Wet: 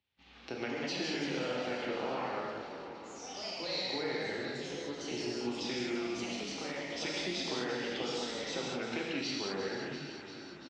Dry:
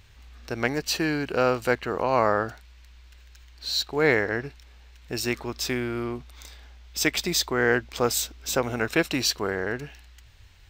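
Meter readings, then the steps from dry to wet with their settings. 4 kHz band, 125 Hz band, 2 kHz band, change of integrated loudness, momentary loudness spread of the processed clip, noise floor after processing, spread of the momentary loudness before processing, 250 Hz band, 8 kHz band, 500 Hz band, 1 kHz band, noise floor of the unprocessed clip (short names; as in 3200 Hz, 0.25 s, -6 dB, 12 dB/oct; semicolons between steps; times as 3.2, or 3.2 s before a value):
-7.5 dB, -13.5 dB, -11.5 dB, -11.0 dB, 8 LU, -50 dBFS, 12 LU, -8.0 dB, -14.0 dB, -10.5 dB, -11.5 dB, -51 dBFS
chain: spectral repair 4.75–5.48, 1200–4100 Hz; gate -47 dBFS, range -31 dB; high shelf 4000 Hz -8.5 dB; compressor, threshold -28 dBFS, peak gain reduction 11.5 dB; frequency-shifting echo 0.344 s, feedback 58%, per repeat -44 Hz, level -11.5 dB; non-linear reverb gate 0.24 s flat, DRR -4 dB; echoes that change speed 0.294 s, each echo +3 st, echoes 3, each echo -6 dB; speaker cabinet 200–5600 Hz, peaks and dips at 420 Hz -4 dB, 620 Hz -4 dB, 1100 Hz -7 dB, 1600 Hz -6 dB, 3100 Hz +4 dB; three-band squash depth 40%; gain -7 dB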